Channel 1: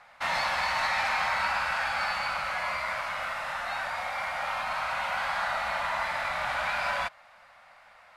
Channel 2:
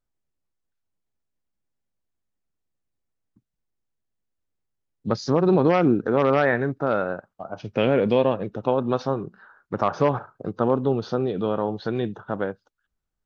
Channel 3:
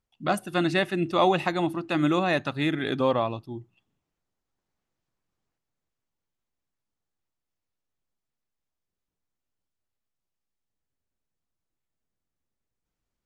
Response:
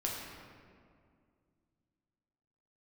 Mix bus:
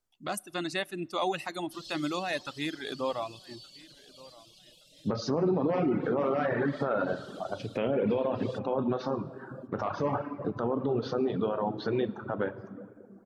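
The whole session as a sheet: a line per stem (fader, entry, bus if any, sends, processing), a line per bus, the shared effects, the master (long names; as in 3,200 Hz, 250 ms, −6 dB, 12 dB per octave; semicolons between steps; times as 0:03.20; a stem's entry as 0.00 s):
−9.0 dB, 1.50 s, bus A, no send, no echo send, Chebyshev band-stop filter 510–3,200 Hz, order 4; comb filter 6.6 ms, depth 84%
−3.5 dB, 0.00 s, bus A, send −5 dB, no echo send, no processing
−7.0 dB, 0.00 s, no bus, send −21 dB, echo send −20.5 dB, bass and treble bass −3 dB, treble +9 dB
bus A: 0.0 dB, treble cut that deepens with the level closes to 1,200 Hz, closed at −18 dBFS; brickwall limiter −17 dBFS, peak gain reduction 6.5 dB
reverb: on, RT60 2.2 s, pre-delay 7 ms
echo: repeating echo 1,172 ms, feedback 24%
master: low-shelf EQ 97 Hz −8 dB; reverb reduction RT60 1.1 s; brickwall limiter −19.5 dBFS, peak gain reduction 9 dB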